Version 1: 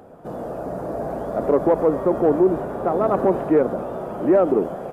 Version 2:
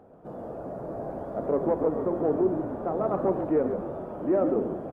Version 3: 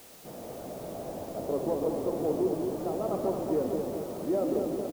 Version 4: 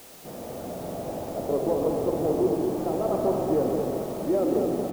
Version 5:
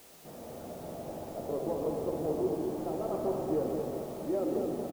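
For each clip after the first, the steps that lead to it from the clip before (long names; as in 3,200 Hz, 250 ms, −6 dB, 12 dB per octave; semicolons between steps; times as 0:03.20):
high-shelf EQ 2,400 Hz −12 dB; hum removal 58.85 Hz, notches 35; echo with shifted repeats 138 ms, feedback 36%, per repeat −56 Hz, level −7.5 dB; level −7 dB
dynamic equaliser 1,500 Hz, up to −7 dB, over −48 dBFS, Q 1.7; repeating echo 221 ms, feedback 56%, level −5.5 dB; bit-depth reduction 8 bits, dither triangular; level −4.5 dB
spring reverb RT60 3.7 s, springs 44 ms, chirp 60 ms, DRR 5 dB; level +4 dB
double-tracking delay 13 ms −11 dB; level −8 dB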